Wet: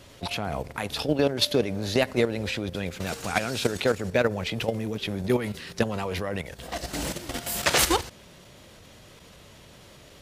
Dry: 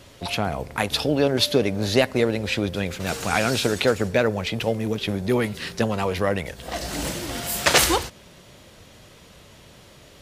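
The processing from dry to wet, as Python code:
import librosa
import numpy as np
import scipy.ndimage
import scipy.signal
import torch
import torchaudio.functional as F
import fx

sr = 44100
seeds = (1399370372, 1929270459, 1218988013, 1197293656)

y = fx.level_steps(x, sr, step_db=10)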